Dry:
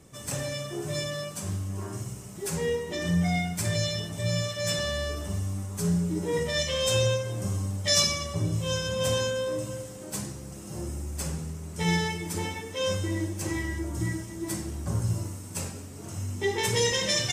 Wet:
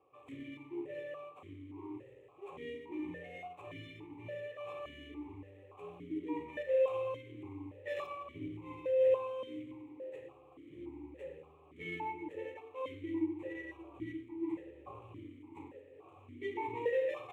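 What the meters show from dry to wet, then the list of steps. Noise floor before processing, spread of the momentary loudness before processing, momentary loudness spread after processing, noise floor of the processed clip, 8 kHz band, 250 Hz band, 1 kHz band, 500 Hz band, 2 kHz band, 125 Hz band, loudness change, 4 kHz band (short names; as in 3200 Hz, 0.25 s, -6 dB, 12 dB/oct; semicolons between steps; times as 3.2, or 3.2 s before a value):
-41 dBFS, 11 LU, 18 LU, -60 dBFS, under -40 dB, -10.0 dB, -7.5 dB, -6.0 dB, -14.5 dB, -25.5 dB, -10.5 dB, -28.0 dB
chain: median filter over 15 samples; fixed phaser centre 1000 Hz, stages 8; vowel sequencer 3.5 Hz; gain +5.5 dB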